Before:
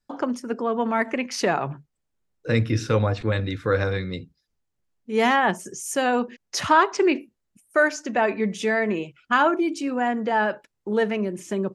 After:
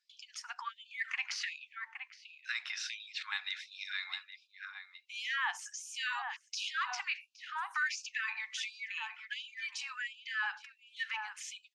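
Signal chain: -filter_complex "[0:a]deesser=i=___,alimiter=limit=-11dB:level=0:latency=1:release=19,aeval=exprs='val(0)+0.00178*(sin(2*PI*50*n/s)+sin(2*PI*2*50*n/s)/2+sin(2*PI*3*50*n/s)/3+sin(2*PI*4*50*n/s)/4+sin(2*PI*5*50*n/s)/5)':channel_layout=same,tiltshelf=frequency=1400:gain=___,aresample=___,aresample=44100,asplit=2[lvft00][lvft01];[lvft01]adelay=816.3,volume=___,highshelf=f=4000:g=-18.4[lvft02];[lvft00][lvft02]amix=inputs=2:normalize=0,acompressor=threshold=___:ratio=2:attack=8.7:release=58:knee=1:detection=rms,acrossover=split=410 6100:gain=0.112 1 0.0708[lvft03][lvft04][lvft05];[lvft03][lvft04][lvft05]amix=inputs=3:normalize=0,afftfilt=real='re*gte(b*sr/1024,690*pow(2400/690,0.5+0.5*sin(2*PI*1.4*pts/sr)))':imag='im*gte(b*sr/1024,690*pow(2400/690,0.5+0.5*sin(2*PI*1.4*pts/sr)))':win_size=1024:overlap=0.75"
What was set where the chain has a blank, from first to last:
0.8, -7, 32000, -11dB, -35dB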